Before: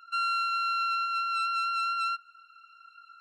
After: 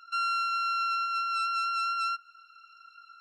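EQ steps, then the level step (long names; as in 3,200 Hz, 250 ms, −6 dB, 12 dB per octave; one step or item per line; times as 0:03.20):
parametric band 5,500 Hz +13 dB 0.32 octaves
dynamic equaliser 3,900 Hz, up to −4 dB, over −43 dBFS, Q 1.4
0.0 dB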